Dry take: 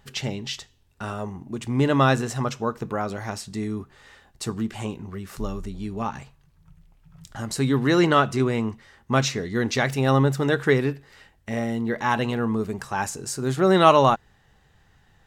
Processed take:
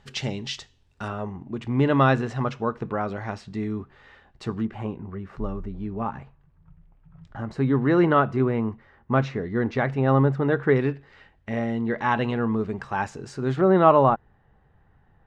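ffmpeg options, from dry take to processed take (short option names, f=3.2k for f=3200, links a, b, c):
-af "asetnsamples=n=441:p=0,asendcmd='1.08 lowpass f 2800;4.65 lowpass f 1600;10.76 lowpass f 2900;13.61 lowpass f 1300',lowpass=6.4k"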